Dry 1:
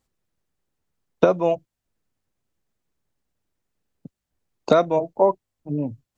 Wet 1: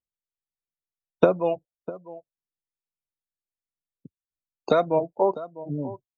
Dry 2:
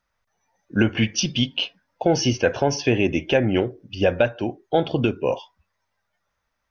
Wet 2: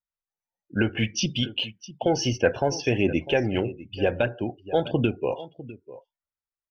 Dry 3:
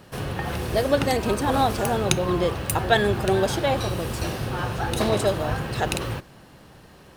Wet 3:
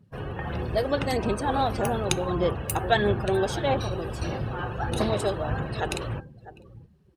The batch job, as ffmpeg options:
-af "aecho=1:1:651:0.158,afftdn=nr=23:nf=-38,aphaser=in_gain=1:out_gain=1:delay=2.6:decay=0.29:speed=1.6:type=sinusoidal,volume=0.631"

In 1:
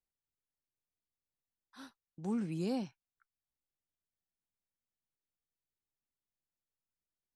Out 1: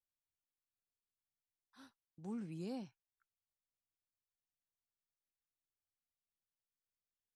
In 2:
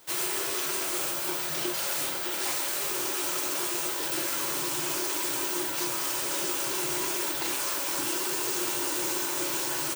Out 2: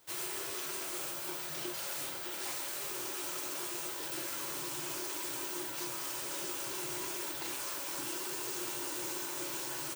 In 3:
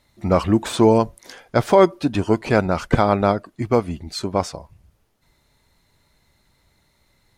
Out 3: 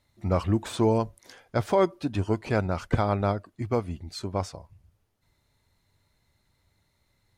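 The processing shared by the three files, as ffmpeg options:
-af "equalizer=f=96:w=2.6:g=8,volume=0.355"

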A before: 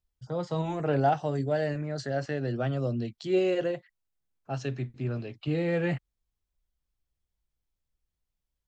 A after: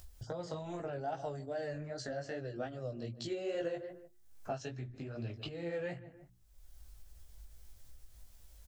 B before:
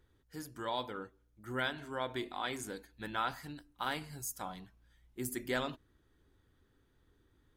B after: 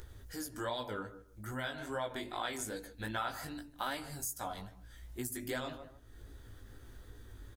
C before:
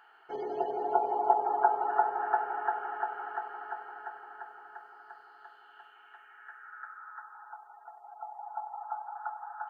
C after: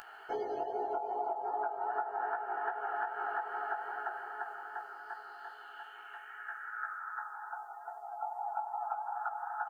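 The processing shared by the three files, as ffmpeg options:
-filter_complex "[0:a]bandreject=f=60:t=h:w=6,bandreject=f=120:t=h:w=6,bandreject=f=180:t=h:w=6,bandreject=f=240:t=h:w=6,bandreject=f=300:t=h:w=6,bandreject=f=360:t=h:w=6,acompressor=mode=upward:threshold=0.00282:ratio=2.5,bass=f=250:g=11,treble=f=4000:g=9,asplit=2[s0][s1];[s1]adelay=150,lowpass=f=1400:p=1,volume=0.158,asplit=2[s2][s3];[s3]adelay=150,lowpass=f=1400:p=1,volume=0.25[s4];[s0][s2][s4]amix=inputs=3:normalize=0,alimiter=limit=0.133:level=0:latency=1:release=491,acompressor=threshold=0.0141:ratio=12,flanger=delay=16.5:depth=3.6:speed=2.5,equalizer=f=160:t=o:w=0.67:g=-11,equalizer=f=630:t=o:w=0.67:g=6,equalizer=f=1600:t=o:w=0.67:g=4,volume=1.78"

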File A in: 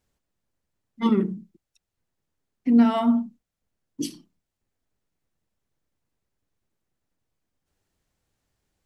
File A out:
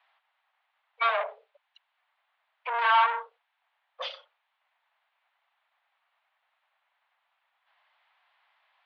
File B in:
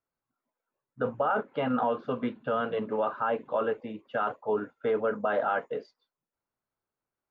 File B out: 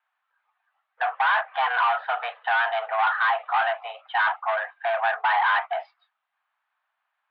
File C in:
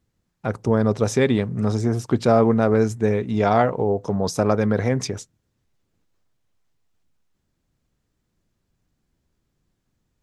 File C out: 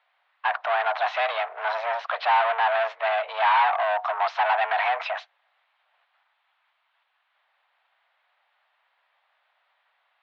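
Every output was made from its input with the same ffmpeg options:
-filter_complex "[0:a]asplit=2[s0][s1];[s1]highpass=f=720:p=1,volume=39.8,asoftclip=type=tanh:threshold=0.668[s2];[s0][s2]amix=inputs=2:normalize=0,lowpass=f=2300:p=1,volume=0.501,highpass=f=490:t=q:w=0.5412,highpass=f=490:t=q:w=1.307,lowpass=f=3500:t=q:w=0.5176,lowpass=f=3500:t=q:w=0.7071,lowpass=f=3500:t=q:w=1.932,afreqshift=230,volume=0.398"

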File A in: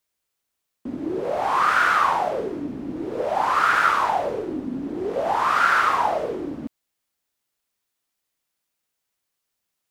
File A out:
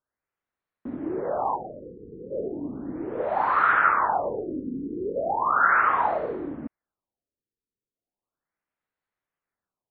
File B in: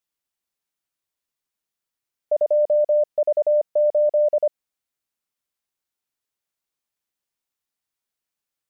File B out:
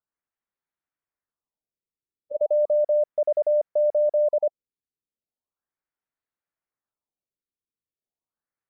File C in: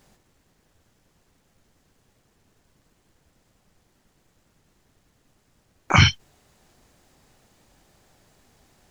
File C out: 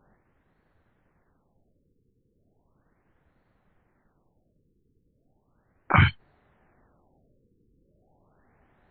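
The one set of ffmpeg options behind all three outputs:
-af "highshelf=f=2400:t=q:w=1.5:g=-8.5,afftfilt=real='re*lt(b*sr/1024,490*pow(4600/490,0.5+0.5*sin(2*PI*0.36*pts/sr)))':imag='im*lt(b*sr/1024,490*pow(4600/490,0.5+0.5*sin(2*PI*0.36*pts/sr)))':win_size=1024:overlap=0.75,volume=0.708"

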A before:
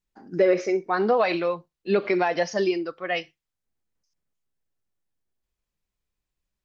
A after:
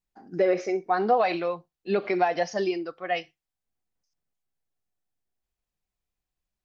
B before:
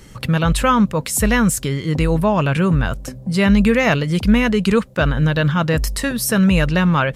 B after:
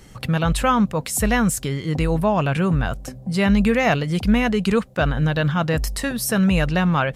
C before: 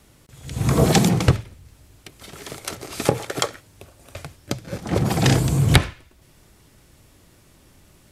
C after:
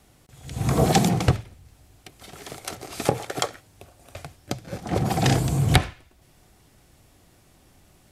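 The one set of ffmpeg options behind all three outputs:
-af "equalizer=f=740:t=o:w=0.2:g=8.5,volume=0.668"

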